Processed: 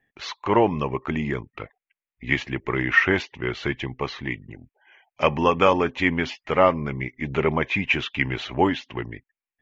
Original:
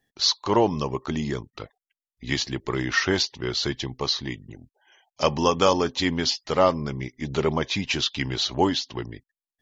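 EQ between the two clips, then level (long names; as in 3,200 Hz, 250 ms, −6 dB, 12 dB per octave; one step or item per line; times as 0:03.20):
high shelf with overshoot 3,300 Hz −12 dB, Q 3
+1.0 dB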